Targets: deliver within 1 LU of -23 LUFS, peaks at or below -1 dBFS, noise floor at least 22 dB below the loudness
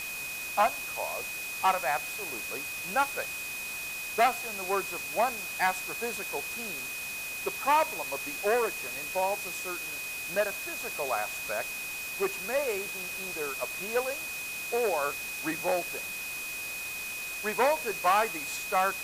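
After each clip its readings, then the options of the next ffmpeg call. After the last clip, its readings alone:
steady tone 2500 Hz; tone level -36 dBFS; noise floor -37 dBFS; noise floor target -53 dBFS; loudness -30.5 LUFS; peak -13.0 dBFS; loudness target -23.0 LUFS
-> -af "bandreject=f=2.5k:w=30"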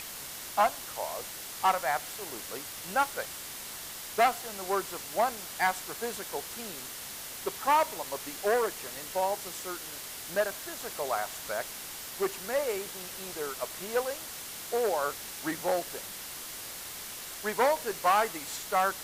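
steady tone none; noise floor -42 dBFS; noise floor target -54 dBFS
-> -af "afftdn=nr=12:nf=-42"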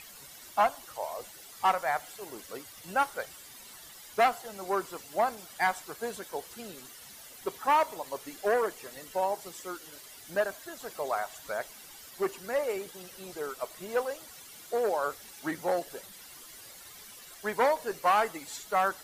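noise floor -50 dBFS; noise floor target -54 dBFS
-> -af "afftdn=nr=6:nf=-50"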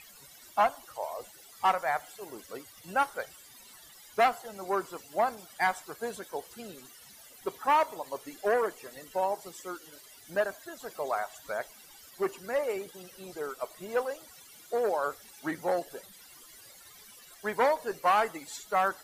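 noise floor -54 dBFS; loudness -31.5 LUFS; peak -13.5 dBFS; loudness target -23.0 LUFS
-> -af "volume=8.5dB"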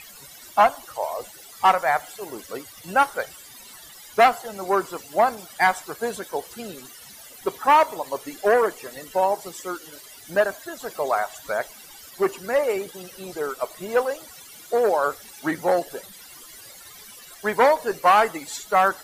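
loudness -23.0 LUFS; peak -5.0 dBFS; noise floor -45 dBFS

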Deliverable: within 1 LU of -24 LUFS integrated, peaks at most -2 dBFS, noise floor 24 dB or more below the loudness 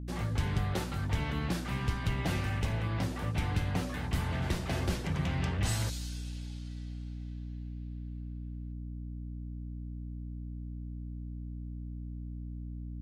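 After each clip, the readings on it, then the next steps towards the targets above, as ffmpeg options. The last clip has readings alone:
hum 60 Hz; harmonics up to 300 Hz; hum level -37 dBFS; loudness -36.0 LUFS; peak -19.5 dBFS; loudness target -24.0 LUFS
-> -af "bandreject=f=60:t=h:w=4,bandreject=f=120:t=h:w=4,bandreject=f=180:t=h:w=4,bandreject=f=240:t=h:w=4,bandreject=f=300:t=h:w=4"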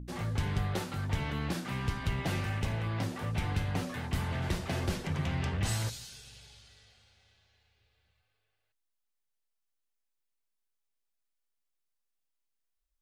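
hum none; loudness -34.0 LUFS; peak -19.0 dBFS; loudness target -24.0 LUFS
-> -af "volume=10dB"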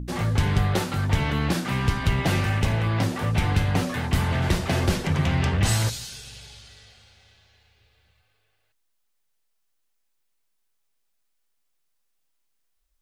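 loudness -24.0 LUFS; peak -9.0 dBFS; noise floor -72 dBFS

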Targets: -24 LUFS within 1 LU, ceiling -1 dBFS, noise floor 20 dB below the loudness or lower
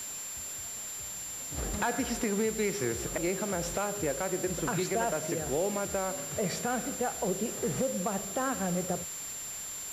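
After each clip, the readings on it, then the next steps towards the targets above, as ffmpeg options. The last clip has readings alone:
steady tone 7300 Hz; tone level -38 dBFS; noise floor -40 dBFS; noise floor target -52 dBFS; loudness -32.0 LUFS; peak -17.5 dBFS; loudness target -24.0 LUFS
-> -af "bandreject=f=7.3k:w=30"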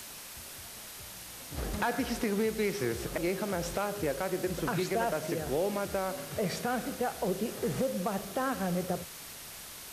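steady tone none; noise floor -46 dBFS; noise floor target -54 dBFS
-> -af "afftdn=nr=8:nf=-46"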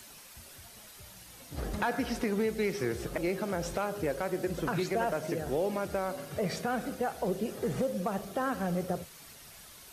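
noise floor -52 dBFS; noise floor target -53 dBFS
-> -af "afftdn=nr=6:nf=-52"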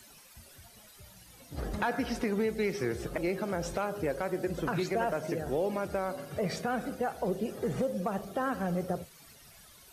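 noise floor -56 dBFS; loudness -33.0 LUFS; peak -18.5 dBFS; loudness target -24.0 LUFS
-> -af "volume=9dB"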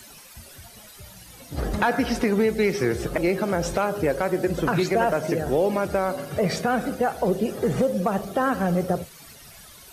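loudness -24.0 LUFS; peak -9.5 dBFS; noise floor -47 dBFS

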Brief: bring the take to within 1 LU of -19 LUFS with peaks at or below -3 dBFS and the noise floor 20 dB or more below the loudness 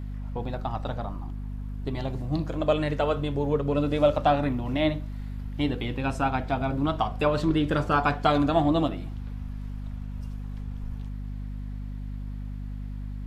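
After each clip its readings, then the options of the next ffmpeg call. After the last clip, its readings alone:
hum 50 Hz; harmonics up to 250 Hz; hum level -32 dBFS; loudness -28.0 LUFS; peak -10.0 dBFS; loudness target -19.0 LUFS
-> -af "bandreject=f=50:t=h:w=6,bandreject=f=100:t=h:w=6,bandreject=f=150:t=h:w=6,bandreject=f=200:t=h:w=6,bandreject=f=250:t=h:w=6"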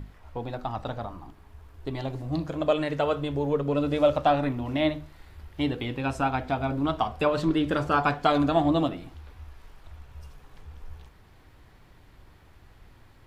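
hum none; loudness -27.0 LUFS; peak -9.5 dBFS; loudness target -19.0 LUFS
-> -af "volume=8dB,alimiter=limit=-3dB:level=0:latency=1"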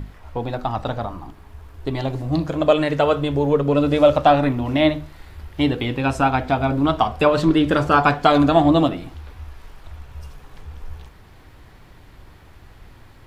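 loudness -19.0 LUFS; peak -3.0 dBFS; noise floor -47 dBFS

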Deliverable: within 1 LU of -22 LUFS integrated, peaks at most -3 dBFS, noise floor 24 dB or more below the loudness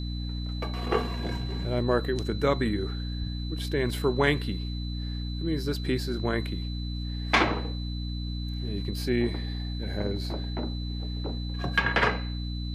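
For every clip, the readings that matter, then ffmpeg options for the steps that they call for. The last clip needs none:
hum 60 Hz; harmonics up to 300 Hz; hum level -30 dBFS; steady tone 4000 Hz; tone level -42 dBFS; loudness -29.5 LUFS; peak -9.0 dBFS; loudness target -22.0 LUFS
-> -af "bandreject=f=60:t=h:w=6,bandreject=f=120:t=h:w=6,bandreject=f=180:t=h:w=6,bandreject=f=240:t=h:w=6,bandreject=f=300:t=h:w=6"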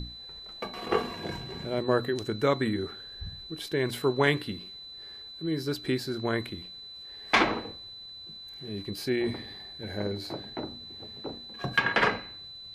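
hum none; steady tone 4000 Hz; tone level -42 dBFS
-> -af "bandreject=f=4k:w=30"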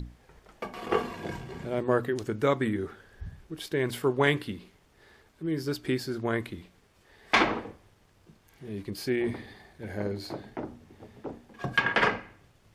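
steady tone none; loudness -30.0 LUFS; peak -9.5 dBFS; loudness target -22.0 LUFS
-> -af "volume=8dB,alimiter=limit=-3dB:level=0:latency=1"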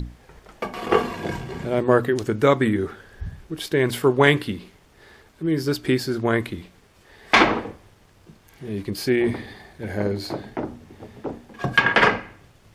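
loudness -22.0 LUFS; peak -3.0 dBFS; noise floor -55 dBFS

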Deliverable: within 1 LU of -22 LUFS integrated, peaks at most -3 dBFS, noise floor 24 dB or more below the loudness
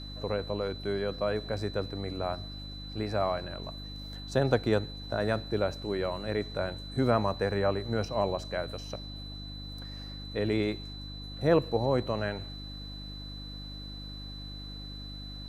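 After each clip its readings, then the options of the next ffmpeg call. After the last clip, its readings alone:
hum 50 Hz; harmonics up to 300 Hz; hum level -40 dBFS; steady tone 4000 Hz; tone level -44 dBFS; loudness -32.5 LUFS; peak -10.5 dBFS; loudness target -22.0 LUFS
-> -af "bandreject=f=50:t=h:w=4,bandreject=f=100:t=h:w=4,bandreject=f=150:t=h:w=4,bandreject=f=200:t=h:w=4,bandreject=f=250:t=h:w=4,bandreject=f=300:t=h:w=4"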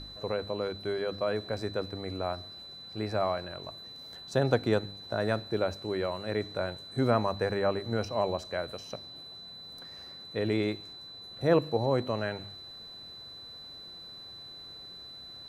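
hum none; steady tone 4000 Hz; tone level -44 dBFS
-> -af "bandreject=f=4k:w=30"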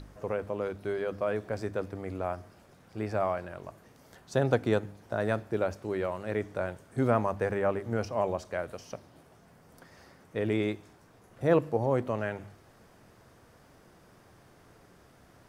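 steady tone none; loudness -31.5 LUFS; peak -10.5 dBFS; loudness target -22.0 LUFS
-> -af "volume=9.5dB,alimiter=limit=-3dB:level=0:latency=1"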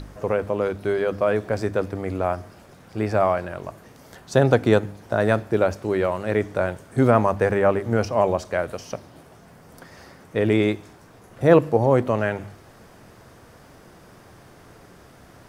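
loudness -22.0 LUFS; peak -3.0 dBFS; noise floor -49 dBFS

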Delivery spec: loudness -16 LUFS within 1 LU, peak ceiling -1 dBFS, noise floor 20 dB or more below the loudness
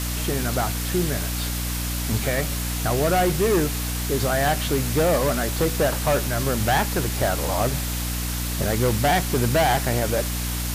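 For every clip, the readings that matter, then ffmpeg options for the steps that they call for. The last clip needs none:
hum 60 Hz; harmonics up to 300 Hz; hum level -25 dBFS; noise floor -27 dBFS; noise floor target -43 dBFS; loudness -22.5 LUFS; peak -10.0 dBFS; loudness target -16.0 LUFS
-> -af "bandreject=f=60:t=h:w=4,bandreject=f=120:t=h:w=4,bandreject=f=180:t=h:w=4,bandreject=f=240:t=h:w=4,bandreject=f=300:t=h:w=4"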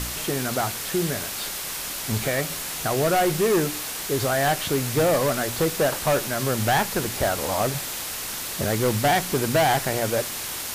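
hum none; noise floor -32 dBFS; noise floor target -44 dBFS
-> -af "afftdn=nr=12:nf=-32"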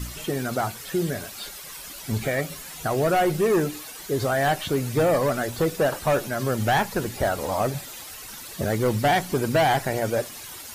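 noise floor -40 dBFS; noise floor target -45 dBFS
-> -af "afftdn=nr=6:nf=-40"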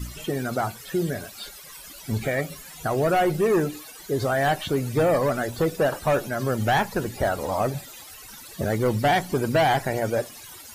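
noise floor -43 dBFS; noise floor target -45 dBFS
-> -af "afftdn=nr=6:nf=-43"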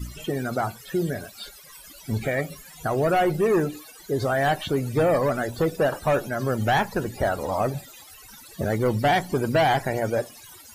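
noise floor -47 dBFS; loudness -24.5 LUFS; peak -13.0 dBFS; loudness target -16.0 LUFS
-> -af "volume=8.5dB"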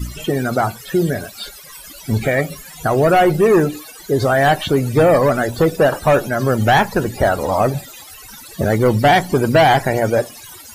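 loudness -16.0 LUFS; peak -4.5 dBFS; noise floor -38 dBFS

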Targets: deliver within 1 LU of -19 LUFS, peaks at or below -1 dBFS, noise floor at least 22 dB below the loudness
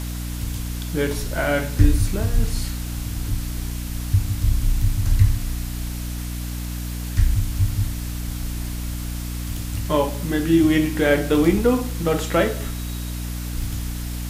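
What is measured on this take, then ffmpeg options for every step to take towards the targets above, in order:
hum 60 Hz; harmonics up to 300 Hz; hum level -26 dBFS; noise floor -29 dBFS; noise floor target -46 dBFS; loudness -23.5 LUFS; peak -2.0 dBFS; loudness target -19.0 LUFS
-> -af "bandreject=f=60:t=h:w=6,bandreject=f=120:t=h:w=6,bandreject=f=180:t=h:w=6,bandreject=f=240:t=h:w=6,bandreject=f=300:t=h:w=6"
-af "afftdn=nr=17:nf=-29"
-af "volume=4.5dB,alimiter=limit=-1dB:level=0:latency=1"

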